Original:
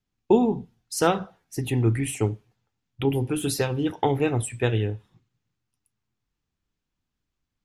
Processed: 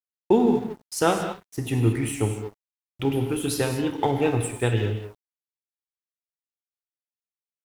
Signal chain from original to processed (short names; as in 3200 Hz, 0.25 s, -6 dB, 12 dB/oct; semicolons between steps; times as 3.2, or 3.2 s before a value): non-linear reverb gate 0.25 s flat, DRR 4.5 dB; requantised 10-bit, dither none; crossover distortion -43.5 dBFS